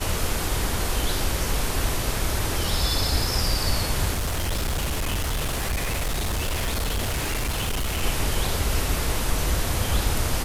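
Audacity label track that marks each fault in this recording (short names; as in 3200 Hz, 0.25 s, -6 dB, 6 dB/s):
4.130000	8.040000	clipped -22 dBFS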